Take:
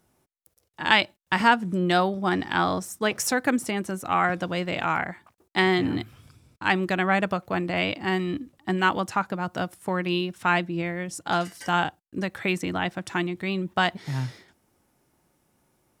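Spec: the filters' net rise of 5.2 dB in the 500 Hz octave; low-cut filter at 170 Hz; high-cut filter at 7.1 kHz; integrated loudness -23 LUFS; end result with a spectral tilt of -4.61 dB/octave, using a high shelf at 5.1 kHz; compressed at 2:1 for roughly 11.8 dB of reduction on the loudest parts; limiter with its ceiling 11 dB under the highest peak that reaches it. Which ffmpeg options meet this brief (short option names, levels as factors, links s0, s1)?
-af "highpass=170,lowpass=7100,equalizer=f=500:t=o:g=7.5,highshelf=f=5100:g=4.5,acompressor=threshold=0.0224:ratio=2,volume=3.98,alimiter=limit=0.316:level=0:latency=1"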